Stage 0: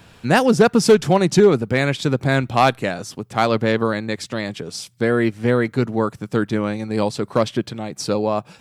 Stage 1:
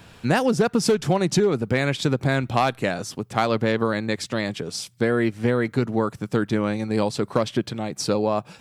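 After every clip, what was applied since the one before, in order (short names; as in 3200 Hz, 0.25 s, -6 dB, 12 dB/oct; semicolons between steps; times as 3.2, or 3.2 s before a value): compressor 6:1, threshold -16 dBFS, peak gain reduction 8.5 dB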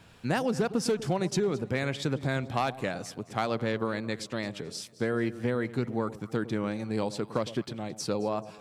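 echo with dull and thin repeats by turns 0.109 s, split 860 Hz, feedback 60%, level -14 dB; wow and flutter 27 cents; gain -8 dB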